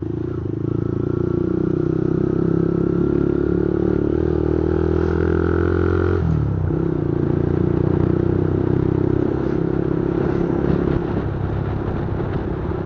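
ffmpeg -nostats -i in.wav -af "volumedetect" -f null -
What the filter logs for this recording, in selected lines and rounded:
mean_volume: -18.9 dB
max_volume: -6.1 dB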